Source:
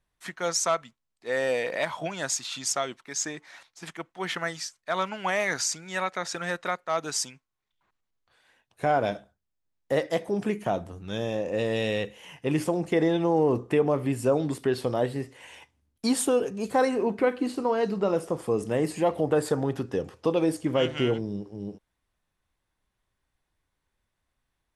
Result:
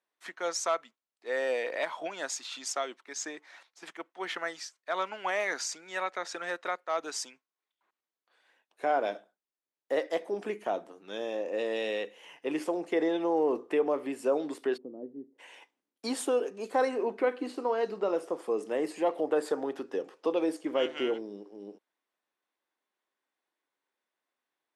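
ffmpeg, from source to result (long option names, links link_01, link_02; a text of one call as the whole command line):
ffmpeg -i in.wav -filter_complex "[0:a]asplit=3[link_01][link_02][link_03];[link_01]afade=type=out:start_time=14.76:duration=0.02[link_04];[link_02]asuperpass=centerf=200:order=4:qfactor=1.1,afade=type=in:start_time=14.76:duration=0.02,afade=type=out:start_time=15.38:duration=0.02[link_05];[link_03]afade=type=in:start_time=15.38:duration=0.02[link_06];[link_04][link_05][link_06]amix=inputs=3:normalize=0,highpass=frequency=290:width=0.5412,highpass=frequency=290:width=1.3066,highshelf=frequency=6900:gain=-9,volume=-3.5dB" out.wav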